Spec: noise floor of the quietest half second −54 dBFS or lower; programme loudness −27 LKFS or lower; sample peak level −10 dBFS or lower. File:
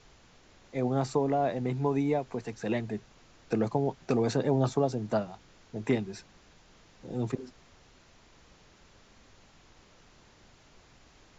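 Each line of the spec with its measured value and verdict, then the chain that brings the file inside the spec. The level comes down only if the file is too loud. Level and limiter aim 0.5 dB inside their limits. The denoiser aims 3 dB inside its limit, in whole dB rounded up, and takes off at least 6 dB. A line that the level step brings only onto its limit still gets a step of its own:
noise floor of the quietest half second −59 dBFS: in spec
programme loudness −31.0 LKFS: in spec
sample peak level −14.0 dBFS: in spec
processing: no processing needed

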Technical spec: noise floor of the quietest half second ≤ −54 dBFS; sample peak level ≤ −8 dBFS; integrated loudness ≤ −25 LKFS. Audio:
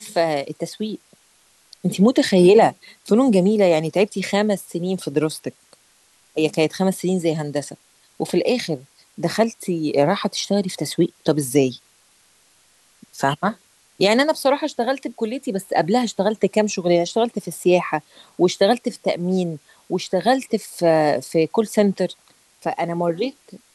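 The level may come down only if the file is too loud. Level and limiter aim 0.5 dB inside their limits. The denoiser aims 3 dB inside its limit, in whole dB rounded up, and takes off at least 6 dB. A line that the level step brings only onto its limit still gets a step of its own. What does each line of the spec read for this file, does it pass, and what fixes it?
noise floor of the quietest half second −57 dBFS: in spec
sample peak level −3.5 dBFS: out of spec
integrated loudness −20.5 LKFS: out of spec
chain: level −5 dB

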